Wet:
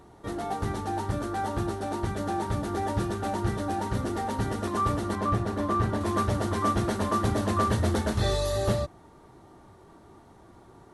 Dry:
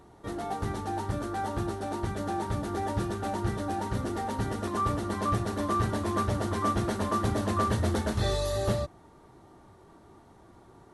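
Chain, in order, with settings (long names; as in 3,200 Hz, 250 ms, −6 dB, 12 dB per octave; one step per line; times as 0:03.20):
0:05.15–0:06.01: high-shelf EQ 3,300 Hz −8.5 dB
level +2 dB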